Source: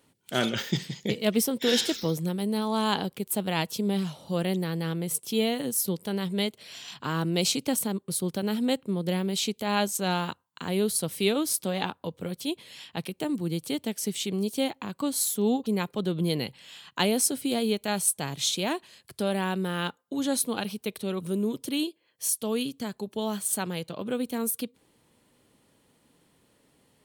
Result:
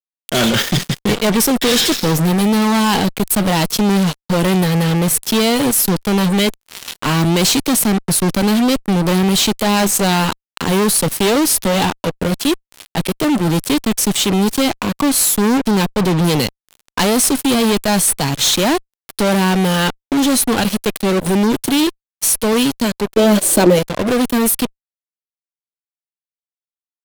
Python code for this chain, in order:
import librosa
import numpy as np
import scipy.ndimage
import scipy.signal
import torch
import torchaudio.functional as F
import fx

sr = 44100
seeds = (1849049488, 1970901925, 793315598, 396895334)

y = fx.cheby_harmonics(x, sr, harmonics=(3, 4, 6, 7), levels_db=(-25, -21, -38, -24), full_scale_db=-8.0)
y = fx.fuzz(y, sr, gain_db=45.0, gate_db=-46.0)
y = fx.small_body(y, sr, hz=(340.0, 540.0), ring_ms=35, db=14, at=(23.17, 23.79))
y = y * 10.0 ** (1.5 / 20.0)